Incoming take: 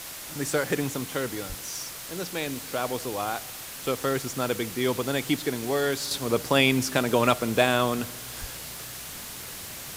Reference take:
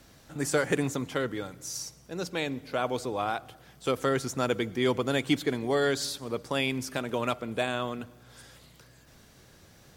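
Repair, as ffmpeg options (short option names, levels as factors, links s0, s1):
-filter_complex "[0:a]adeclick=t=4,asplit=3[s0][s1][s2];[s0]afade=t=out:st=1.48:d=0.02[s3];[s1]highpass=f=140:w=0.5412,highpass=f=140:w=1.3066,afade=t=in:st=1.48:d=0.02,afade=t=out:st=1.6:d=0.02[s4];[s2]afade=t=in:st=1.6:d=0.02[s5];[s3][s4][s5]amix=inputs=3:normalize=0,asplit=3[s6][s7][s8];[s6]afade=t=out:st=8.4:d=0.02[s9];[s7]highpass=f=140:w=0.5412,highpass=f=140:w=1.3066,afade=t=in:st=8.4:d=0.02,afade=t=out:st=8.52:d=0.02[s10];[s8]afade=t=in:st=8.52:d=0.02[s11];[s9][s10][s11]amix=inputs=3:normalize=0,afwtdn=0.013,asetnsamples=n=441:p=0,asendcmd='6.11 volume volume -8dB',volume=1"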